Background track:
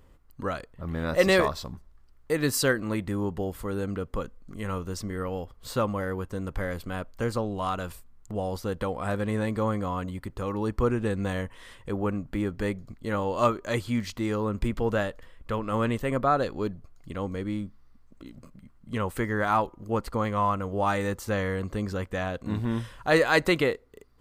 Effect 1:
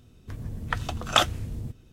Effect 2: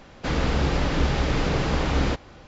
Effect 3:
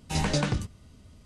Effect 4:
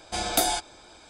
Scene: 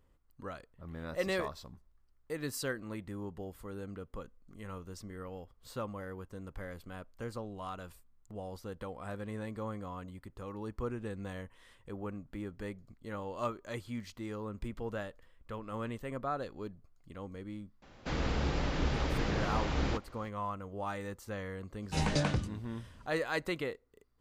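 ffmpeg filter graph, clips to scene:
-filter_complex "[0:a]volume=-12.5dB[a];[3:a]highshelf=f=8.5k:g=-8.5[b];[2:a]atrim=end=2.47,asetpts=PTS-STARTPTS,volume=-9.5dB,afade=t=in:d=0.004:c=hsin,afade=t=out:st=2.466:d=0.004:c=hsin,adelay=17820[c];[b]atrim=end=1.25,asetpts=PTS-STARTPTS,volume=-4dB,afade=t=in:d=0.004:c=hsin,afade=t=out:st=1.246:d=0.004:c=hsin,adelay=21820[d];[a][c][d]amix=inputs=3:normalize=0"

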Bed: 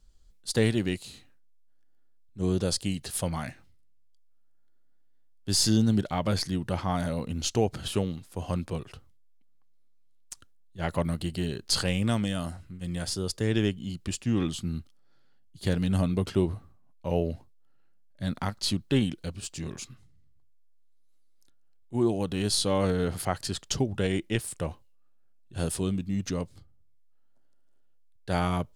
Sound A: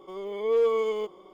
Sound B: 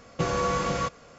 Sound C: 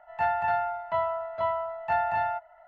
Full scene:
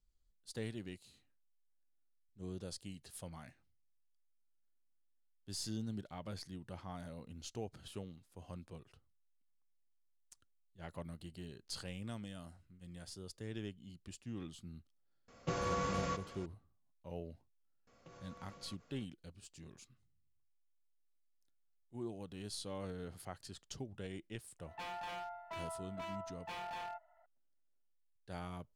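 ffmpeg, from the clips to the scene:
-filter_complex "[2:a]asplit=2[a][b];[0:a]volume=-18.5dB[c];[a]aecho=1:1:376:0.158[d];[b]acompressor=threshold=-37dB:ratio=6:attack=3.2:release=140:knee=1:detection=peak[e];[3:a]aeval=exprs='0.0596*(abs(mod(val(0)/0.0596+3,4)-2)-1)':c=same[f];[d]atrim=end=1.18,asetpts=PTS-STARTPTS,volume=-10.5dB,afade=t=in:d=0.004:c=hsin,afade=t=out:st=1.176:d=0.004:c=hsin,adelay=15280[g];[e]atrim=end=1.18,asetpts=PTS-STARTPTS,volume=-17.5dB,afade=t=in:d=0.004:c=hsin,afade=t=out:st=1.176:d=0.004:c=hsin,adelay=17870[h];[f]atrim=end=2.67,asetpts=PTS-STARTPTS,volume=-14.5dB,afade=t=in:d=0.004:c=hsin,afade=t=out:st=2.666:d=0.004:c=hsin,adelay=24590[i];[c][g][h][i]amix=inputs=4:normalize=0"

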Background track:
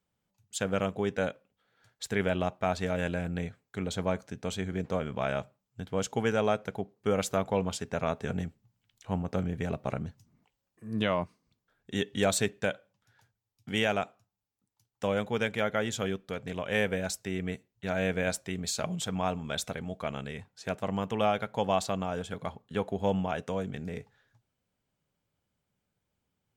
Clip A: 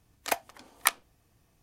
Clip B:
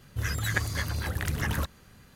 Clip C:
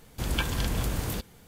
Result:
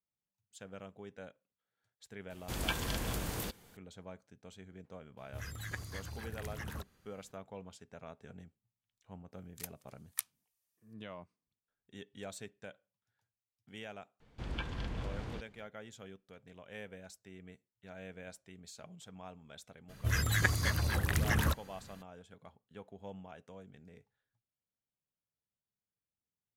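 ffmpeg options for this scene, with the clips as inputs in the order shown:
-filter_complex "[3:a]asplit=2[a][b];[2:a]asplit=2[c][d];[0:a]volume=-19dB[e];[a]lowshelf=f=190:g=-6.5[f];[1:a]aderivative[g];[b]lowpass=3.4k[h];[f]atrim=end=1.47,asetpts=PTS-STARTPTS,volume=-4.5dB,afade=t=in:d=0.004:c=hsin,afade=t=out:st=1.466:d=0.004:c=hsin,adelay=2300[i];[c]atrim=end=2.15,asetpts=PTS-STARTPTS,volume=-14dB,afade=t=in:d=0.004:c=hsin,afade=t=out:st=2.146:d=0.004:c=hsin,adelay=227997S[j];[g]atrim=end=1.62,asetpts=PTS-STARTPTS,volume=-11.5dB,afade=t=in:d=0.004:c=hsin,afade=t=out:st=1.616:d=0.004:c=hsin,adelay=9320[k];[h]atrim=end=1.47,asetpts=PTS-STARTPTS,volume=-10.5dB,afade=t=in:d=0.004:c=hsin,afade=t=out:st=1.466:d=0.004:c=hsin,adelay=14200[l];[d]atrim=end=2.15,asetpts=PTS-STARTPTS,volume=-1dB,afade=t=in:d=0.02,afade=t=out:st=2.13:d=0.02,adelay=876708S[m];[e][i][j][k][l][m]amix=inputs=6:normalize=0"

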